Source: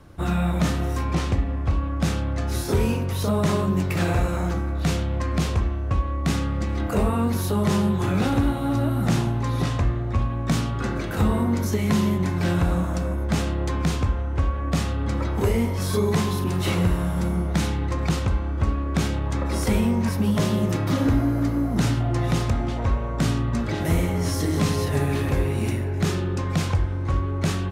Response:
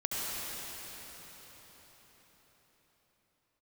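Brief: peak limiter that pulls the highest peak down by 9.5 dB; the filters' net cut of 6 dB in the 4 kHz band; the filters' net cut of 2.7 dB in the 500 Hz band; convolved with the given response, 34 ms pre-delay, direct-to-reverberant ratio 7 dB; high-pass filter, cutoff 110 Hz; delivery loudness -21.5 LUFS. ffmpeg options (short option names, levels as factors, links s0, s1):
-filter_complex "[0:a]highpass=110,equalizer=f=500:t=o:g=-3.5,equalizer=f=4000:t=o:g=-8,alimiter=limit=0.0944:level=0:latency=1,asplit=2[s0][s1];[1:a]atrim=start_sample=2205,adelay=34[s2];[s1][s2]afir=irnorm=-1:irlink=0,volume=0.188[s3];[s0][s3]amix=inputs=2:normalize=0,volume=2.24"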